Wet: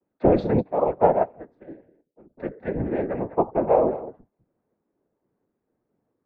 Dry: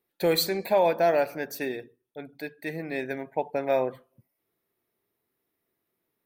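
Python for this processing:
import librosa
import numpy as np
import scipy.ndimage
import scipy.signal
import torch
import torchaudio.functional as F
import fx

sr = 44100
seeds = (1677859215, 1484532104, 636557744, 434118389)

y = fx.vocoder_arp(x, sr, chord='minor triad', root=50, every_ms=227)
y = scipy.signal.sosfilt(scipy.signal.butter(2, 190.0, 'highpass', fs=sr, output='sos'), y)
y = np.clip(y, -10.0 ** (-16.0 / 20.0), 10.0 ** (-16.0 / 20.0))
y = scipy.signal.sosfilt(scipy.signal.butter(2, 1300.0, 'lowpass', fs=sr, output='sos'), y)
y = y + 10.0 ** (-15.0 / 20.0) * np.pad(y, (int(200 * sr / 1000.0), 0))[:len(y)]
y = fx.whisperise(y, sr, seeds[0])
y = fx.upward_expand(y, sr, threshold_db=-33.0, expansion=2.5, at=(0.6, 2.37), fade=0.02)
y = y * librosa.db_to_amplitude(7.5)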